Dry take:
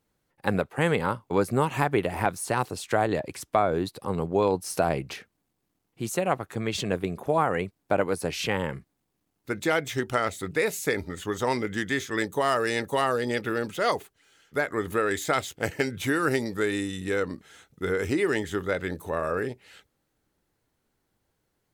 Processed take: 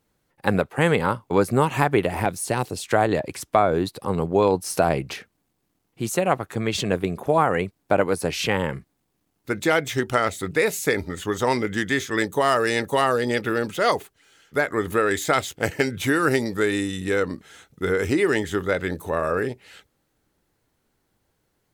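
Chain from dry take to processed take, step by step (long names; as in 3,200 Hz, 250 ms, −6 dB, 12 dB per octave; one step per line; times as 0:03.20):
0:02.20–0:02.85: parametric band 1,200 Hz −7 dB 1.2 octaves
level +4.5 dB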